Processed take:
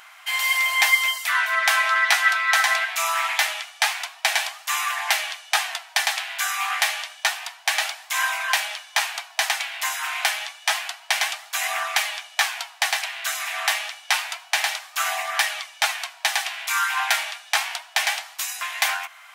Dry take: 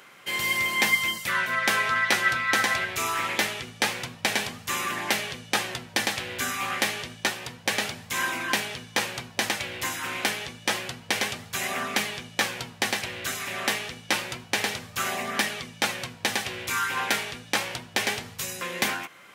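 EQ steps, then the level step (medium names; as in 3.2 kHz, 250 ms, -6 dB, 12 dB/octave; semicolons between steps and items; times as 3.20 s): brick-wall FIR high-pass 620 Hz; +4.5 dB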